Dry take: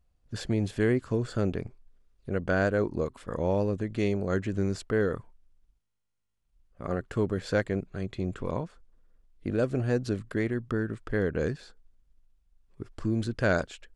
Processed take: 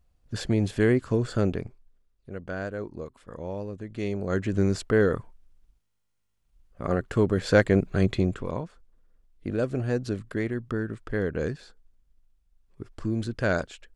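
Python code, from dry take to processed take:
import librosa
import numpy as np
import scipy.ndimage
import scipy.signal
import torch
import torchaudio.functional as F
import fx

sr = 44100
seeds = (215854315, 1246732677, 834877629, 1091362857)

y = fx.gain(x, sr, db=fx.line((1.43, 3.5), (2.29, -7.5), (3.74, -7.5), (4.6, 5.0), (7.29, 5.0), (8.09, 12.0), (8.46, 0.0)))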